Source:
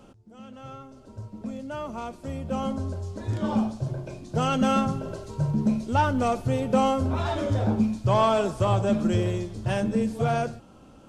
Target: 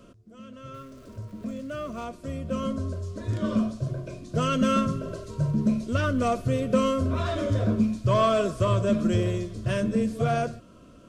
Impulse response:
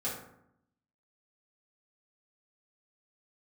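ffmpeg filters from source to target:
-filter_complex "[0:a]asettb=1/sr,asplit=3[a][b][c];[a]atrim=end=0.744[d];[b]atrim=start=0.74:end=2.05,asetpts=PTS-STARTPTS,afade=t=in:d=0.004:c=qsin,afade=t=out:st=1.306:d=0.004:c=qsin,aeval=exprs='val(0)+0.5*0.00316*sgn(val(0))':c=same[e];[c]atrim=start=2.046[f];[d][e]acrossfade=d=0.004:c1=hsin:c2=qsin[g];[g][f]acrossfade=d=0.004:c1=qsin:c2=hsin,asuperstop=centerf=830:order=12:qfactor=3.7"

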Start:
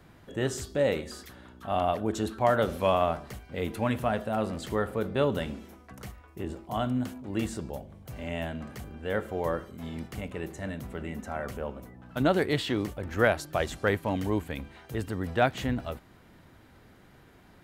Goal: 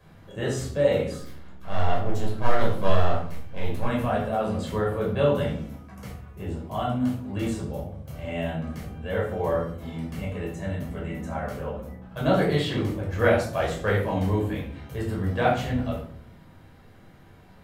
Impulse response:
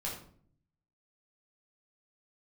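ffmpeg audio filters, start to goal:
-filter_complex "[0:a]asettb=1/sr,asplit=3[a][b][c];[a]atrim=end=1.184[d];[b]atrim=start=1.18:end=3.85,asetpts=PTS-STARTPTS,afade=t=in:d=0.004:c=qsin,afade=t=out:st=2.666:d=0.004:c=qsin,aeval=exprs='max(val(0),0)':c=same[e];[c]atrim=start=3.846[f];[d][e]acrossfade=d=0.004:c1=hsin:c2=qsin[g];[g][f]acrossfade=d=0.004:c1=qsin:c2=hsin[h];[1:a]atrim=start_sample=2205,asetrate=43218,aresample=44100[i];[h][i]afir=irnorm=-1:irlink=0"

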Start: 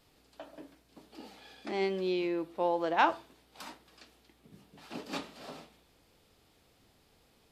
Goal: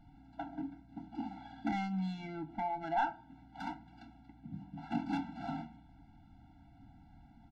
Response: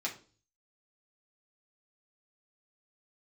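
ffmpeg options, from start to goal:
-filter_complex "[0:a]highshelf=f=3.4k:g=8.5,acompressor=threshold=-37dB:ratio=10,asoftclip=type=hard:threshold=-33dB,adynamicsmooth=sensitivity=3:basefreq=870,asplit=2[a][b];[b]adelay=26,volume=-12dB[c];[a][c]amix=inputs=2:normalize=0,asplit=2[d][e];[1:a]atrim=start_sample=2205[f];[e][f]afir=irnorm=-1:irlink=0,volume=-16.5dB[g];[d][g]amix=inputs=2:normalize=0,afftfilt=real='re*eq(mod(floor(b*sr/1024/330),2),0)':imag='im*eq(mod(floor(b*sr/1024/330),2),0)':win_size=1024:overlap=0.75,volume=11.5dB"

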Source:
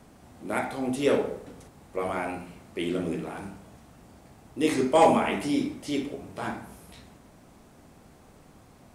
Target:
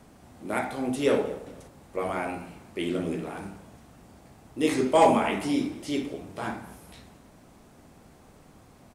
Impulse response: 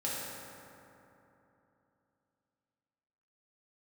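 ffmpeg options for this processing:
-filter_complex "[0:a]asplit=3[a][b][c];[b]adelay=227,afreqshift=47,volume=-21.5dB[d];[c]adelay=454,afreqshift=94,volume=-31.1dB[e];[a][d][e]amix=inputs=3:normalize=0"

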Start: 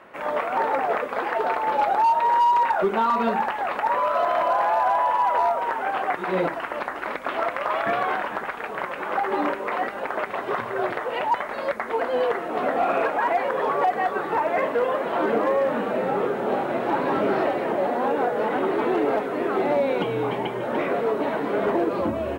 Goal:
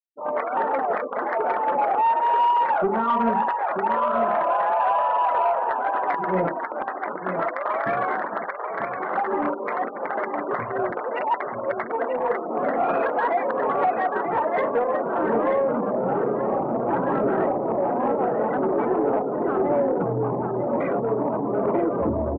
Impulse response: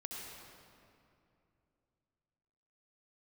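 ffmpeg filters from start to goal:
-af "afwtdn=0.0316,lowshelf=f=160:g=11,afftfilt=real='re*gte(hypot(re,im),0.0501)':imag='im*gte(hypot(re,im),0.0501)':win_size=1024:overlap=0.75,equalizer=f=9.1k:w=1.3:g=10,aecho=1:1:937:0.422,asoftclip=type=tanh:threshold=-12dB,bandreject=f=50:t=h:w=6,bandreject=f=100:t=h:w=6,bandreject=f=150:t=h:w=6,bandreject=f=200:t=h:w=6,bandreject=f=250:t=h:w=6,bandreject=f=300:t=h:w=6,bandreject=f=350:t=h:w=6,bandreject=f=400:t=h:w=6,bandreject=f=450:t=h:w=6,bandreject=f=500:t=h:w=6"

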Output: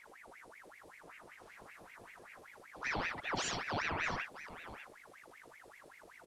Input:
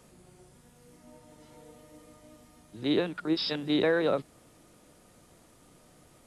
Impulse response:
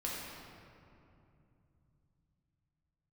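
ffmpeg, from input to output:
-filter_complex "[0:a]alimiter=limit=-23.5dB:level=0:latency=1:release=14,aecho=1:1:57|66|75|80|666:0.422|0.398|0.299|0.15|0.237,asplit=3[a][b][c];[b]asetrate=22050,aresample=44100,atempo=2,volume=-5dB[d];[c]asetrate=58866,aresample=44100,atempo=0.749154,volume=-16dB[e];[a][d][e]amix=inputs=3:normalize=0,aeval=exprs='val(0)+0.00355*(sin(2*PI*50*n/s)+sin(2*PI*2*50*n/s)/2+sin(2*PI*3*50*n/s)/3+sin(2*PI*4*50*n/s)/4+sin(2*PI*5*50*n/s)/5)':c=same,aeval=exprs='val(0)*sin(2*PI*1300*n/s+1300*0.7/5.2*sin(2*PI*5.2*n/s))':c=same,volume=-5.5dB"

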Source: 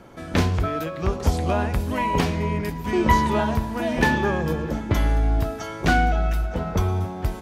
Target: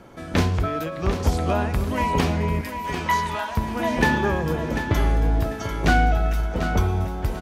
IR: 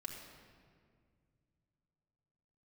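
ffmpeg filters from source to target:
-filter_complex "[0:a]asettb=1/sr,asplit=3[a][b][c];[a]atrim=end=2.614[d];[b]atrim=start=2.61:end=3.57,asetpts=PTS-STARTPTS,afade=t=in:d=0.004:c=qsin,afade=t=out:st=0.956:d=0.004:c=qsin,highpass=920[e];[c]atrim=start=3.566[f];[d][e]acrossfade=d=0.004:c1=hsin:c2=qsin[g];[g][f]acrossfade=d=0.004:c1=qsin:c2=hsin,aecho=1:1:744|1488|2232:0.355|0.0958|0.0259"

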